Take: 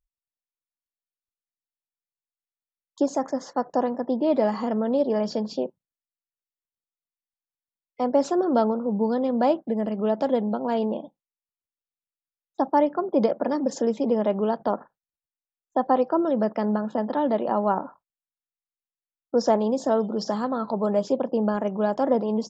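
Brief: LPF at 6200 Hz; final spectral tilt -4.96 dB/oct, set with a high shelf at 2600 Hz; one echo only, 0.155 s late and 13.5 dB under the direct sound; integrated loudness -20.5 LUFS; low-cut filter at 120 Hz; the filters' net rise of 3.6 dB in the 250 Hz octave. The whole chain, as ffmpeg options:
-af "highpass=120,lowpass=6.2k,equalizer=f=250:t=o:g=4.5,highshelf=f=2.6k:g=5.5,aecho=1:1:155:0.211,volume=2dB"

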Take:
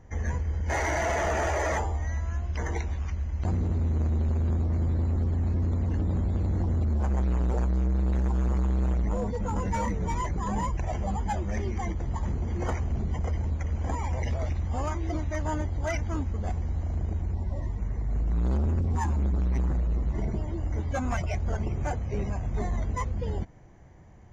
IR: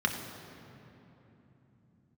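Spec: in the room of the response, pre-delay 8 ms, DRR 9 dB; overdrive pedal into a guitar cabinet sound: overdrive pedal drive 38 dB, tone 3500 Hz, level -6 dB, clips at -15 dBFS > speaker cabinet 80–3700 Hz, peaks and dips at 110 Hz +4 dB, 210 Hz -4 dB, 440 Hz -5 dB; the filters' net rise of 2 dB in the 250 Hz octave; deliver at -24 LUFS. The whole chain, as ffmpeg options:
-filter_complex "[0:a]equalizer=f=250:t=o:g=5.5,asplit=2[a][b];[1:a]atrim=start_sample=2205,adelay=8[c];[b][c]afir=irnorm=-1:irlink=0,volume=-18.5dB[d];[a][d]amix=inputs=2:normalize=0,asplit=2[e][f];[f]highpass=f=720:p=1,volume=38dB,asoftclip=type=tanh:threshold=-15dB[g];[e][g]amix=inputs=2:normalize=0,lowpass=f=3.5k:p=1,volume=-6dB,highpass=80,equalizer=f=110:t=q:w=4:g=4,equalizer=f=210:t=q:w=4:g=-4,equalizer=f=440:t=q:w=4:g=-5,lowpass=f=3.7k:w=0.5412,lowpass=f=3.7k:w=1.3066,volume=-0.5dB"

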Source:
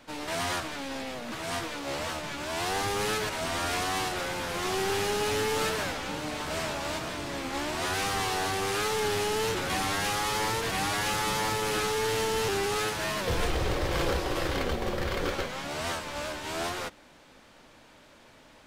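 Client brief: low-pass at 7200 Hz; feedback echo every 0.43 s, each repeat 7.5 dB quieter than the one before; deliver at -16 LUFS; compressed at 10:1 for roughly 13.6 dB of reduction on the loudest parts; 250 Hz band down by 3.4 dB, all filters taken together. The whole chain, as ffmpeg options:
-af "lowpass=7.2k,equalizer=f=250:t=o:g=-5,acompressor=threshold=-39dB:ratio=10,aecho=1:1:430|860|1290|1720|2150:0.422|0.177|0.0744|0.0312|0.0131,volume=24.5dB"

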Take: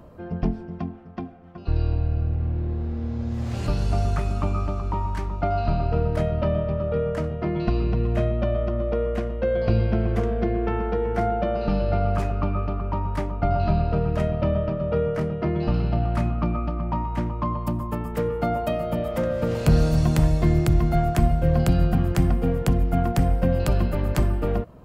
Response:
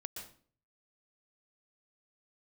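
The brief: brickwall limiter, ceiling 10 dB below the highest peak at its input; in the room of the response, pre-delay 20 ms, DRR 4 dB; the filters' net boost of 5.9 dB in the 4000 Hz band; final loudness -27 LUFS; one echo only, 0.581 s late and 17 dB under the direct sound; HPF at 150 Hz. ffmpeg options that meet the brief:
-filter_complex "[0:a]highpass=150,equalizer=f=4k:t=o:g=7.5,alimiter=limit=-18dB:level=0:latency=1,aecho=1:1:581:0.141,asplit=2[a][b];[1:a]atrim=start_sample=2205,adelay=20[c];[b][c]afir=irnorm=-1:irlink=0,volume=-1.5dB[d];[a][d]amix=inputs=2:normalize=0,volume=-1dB"

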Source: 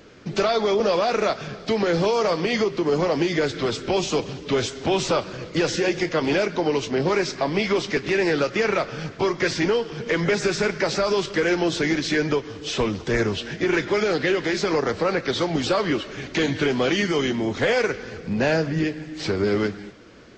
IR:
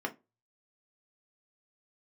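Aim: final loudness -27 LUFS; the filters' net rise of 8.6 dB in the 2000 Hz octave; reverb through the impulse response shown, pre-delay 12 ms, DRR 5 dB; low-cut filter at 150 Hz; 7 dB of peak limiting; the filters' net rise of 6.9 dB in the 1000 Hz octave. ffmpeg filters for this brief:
-filter_complex "[0:a]highpass=150,equalizer=f=1k:t=o:g=6.5,equalizer=f=2k:t=o:g=8.5,alimiter=limit=-11dB:level=0:latency=1,asplit=2[a][b];[1:a]atrim=start_sample=2205,adelay=12[c];[b][c]afir=irnorm=-1:irlink=0,volume=-9.5dB[d];[a][d]amix=inputs=2:normalize=0,volume=-7dB"

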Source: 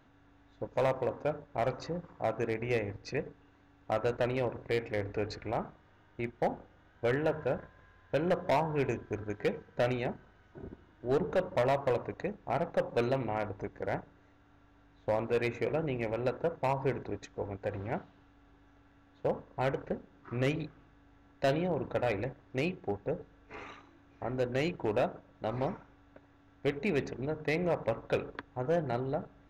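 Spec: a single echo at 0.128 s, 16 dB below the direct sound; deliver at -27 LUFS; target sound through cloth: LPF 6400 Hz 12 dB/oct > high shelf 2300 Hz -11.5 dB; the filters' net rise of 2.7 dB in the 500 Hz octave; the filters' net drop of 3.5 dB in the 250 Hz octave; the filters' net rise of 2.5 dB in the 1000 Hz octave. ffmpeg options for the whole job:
-af "lowpass=6.4k,equalizer=f=250:t=o:g=-7.5,equalizer=f=500:t=o:g=4.5,equalizer=f=1k:t=o:g=4,highshelf=f=2.3k:g=-11.5,aecho=1:1:128:0.158,volume=5.5dB"

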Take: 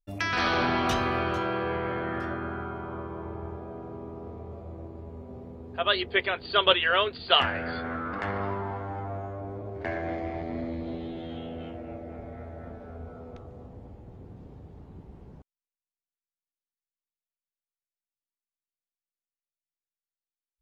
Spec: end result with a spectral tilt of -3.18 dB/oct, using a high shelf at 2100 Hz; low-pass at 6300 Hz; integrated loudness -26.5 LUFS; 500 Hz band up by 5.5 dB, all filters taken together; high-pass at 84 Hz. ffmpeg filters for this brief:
-af "highpass=84,lowpass=6.3k,equalizer=f=500:t=o:g=7.5,highshelf=f=2.1k:g=-7,volume=2dB"

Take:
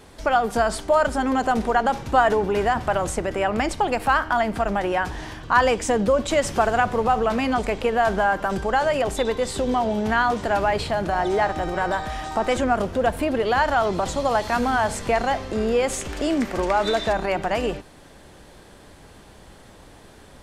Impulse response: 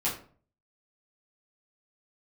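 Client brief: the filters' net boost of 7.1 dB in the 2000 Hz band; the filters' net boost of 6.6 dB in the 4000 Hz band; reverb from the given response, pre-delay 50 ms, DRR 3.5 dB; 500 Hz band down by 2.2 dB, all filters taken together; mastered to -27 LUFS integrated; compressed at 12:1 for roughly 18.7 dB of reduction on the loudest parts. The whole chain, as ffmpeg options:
-filter_complex "[0:a]equalizer=f=500:t=o:g=-3.5,equalizer=f=2k:t=o:g=9,equalizer=f=4k:t=o:g=5,acompressor=threshold=-27dB:ratio=12,asplit=2[a][b];[1:a]atrim=start_sample=2205,adelay=50[c];[b][c]afir=irnorm=-1:irlink=0,volume=-11dB[d];[a][d]amix=inputs=2:normalize=0,volume=2.5dB"

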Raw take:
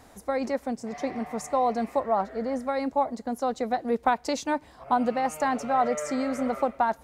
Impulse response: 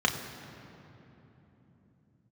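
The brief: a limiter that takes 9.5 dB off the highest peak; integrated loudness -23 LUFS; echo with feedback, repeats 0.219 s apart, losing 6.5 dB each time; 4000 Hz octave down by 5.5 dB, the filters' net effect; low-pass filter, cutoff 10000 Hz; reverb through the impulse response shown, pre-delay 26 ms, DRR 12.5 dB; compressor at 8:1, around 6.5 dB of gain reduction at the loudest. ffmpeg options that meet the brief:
-filter_complex "[0:a]lowpass=10k,equalizer=f=4k:t=o:g=-6.5,acompressor=threshold=-25dB:ratio=8,alimiter=limit=-23.5dB:level=0:latency=1,aecho=1:1:219|438|657|876|1095|1314:0.473|0.222|0.105|0.0491|0.0231|0.0109,asplit=2[a][b];[1:a]atrim=start_sample=2205,adelay=26[c];[b][c]afir=irnorm=-1:irlink=0,volume=-24.5dB[d];[a][d]amix=inputs=2:normalize=0,volume=9dB"

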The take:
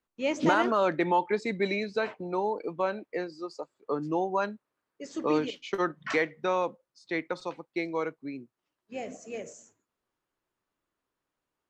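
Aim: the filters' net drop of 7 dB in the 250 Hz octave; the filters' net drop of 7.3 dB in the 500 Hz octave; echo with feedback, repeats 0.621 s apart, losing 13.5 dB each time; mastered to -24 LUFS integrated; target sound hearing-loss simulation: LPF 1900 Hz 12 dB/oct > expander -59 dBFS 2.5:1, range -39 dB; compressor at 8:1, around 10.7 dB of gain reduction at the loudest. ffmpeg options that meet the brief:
-af "equalizer=f=250:t=o:g=-7,equalizer=f=500:t=o:g=-7,acompressor=threshold=-34dB:ratio=8,lowpass=1.9k,aecho=1:1:621|1242:0.211|0.0444,agate=range=-39dB:threshold=-59dB:ratio=2.5,volume=18dB"

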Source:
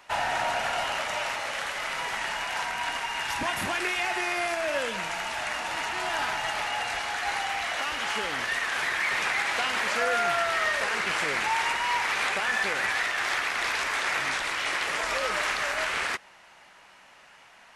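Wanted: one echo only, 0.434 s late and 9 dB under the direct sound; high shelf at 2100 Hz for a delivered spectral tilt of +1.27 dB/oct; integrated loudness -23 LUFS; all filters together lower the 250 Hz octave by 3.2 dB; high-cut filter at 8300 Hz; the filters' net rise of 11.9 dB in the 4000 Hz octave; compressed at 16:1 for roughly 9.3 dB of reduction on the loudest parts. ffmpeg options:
-af "lowpass=8.3k,equalizer=f=250:t=o:g=-5,highshelf=f=2.1k:g=8,equalizer=f=4k:t=o:g=8.5,acompressor=threshold=-26dB:ratio=16,aecho=1:1:434:0.355,volume=4.5dB"

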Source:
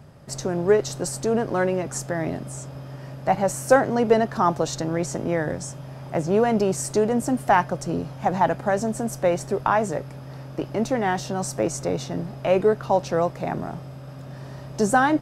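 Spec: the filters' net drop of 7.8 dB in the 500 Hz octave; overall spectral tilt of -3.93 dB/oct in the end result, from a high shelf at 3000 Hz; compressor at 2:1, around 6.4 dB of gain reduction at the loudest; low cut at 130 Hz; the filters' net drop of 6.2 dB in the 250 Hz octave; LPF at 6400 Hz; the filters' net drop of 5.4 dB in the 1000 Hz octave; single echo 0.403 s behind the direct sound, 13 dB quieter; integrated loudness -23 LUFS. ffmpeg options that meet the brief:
-af "highpass=130,lowpass=6.4k,equalizer=f=250:t=o:g=-5.5,equalizer=f=500:t=o:g=-7,equalizer=f=1k:t=o:g=-4.5,highshelf=f=3k:g=5,acompressor=threshold=-30dB:ratio=2,aecho=1:1:403:0.224,volume=10dB"

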